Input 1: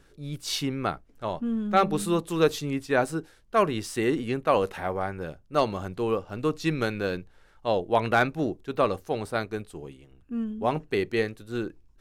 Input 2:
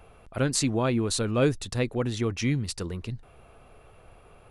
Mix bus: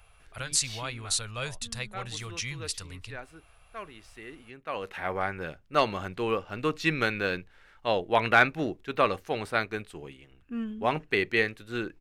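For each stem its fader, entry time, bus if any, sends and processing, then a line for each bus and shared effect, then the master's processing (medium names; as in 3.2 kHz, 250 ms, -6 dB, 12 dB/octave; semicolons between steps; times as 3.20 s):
-3.5 dB, 0.20 s, no send, peaking EQ 2.2 kHz +11 dB 1.8 oct; auto duck -19 dB, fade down 1.05 s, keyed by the second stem
+2.5 dB, 0.00 s, no send, amplifier tone stack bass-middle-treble 10-0-10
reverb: none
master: none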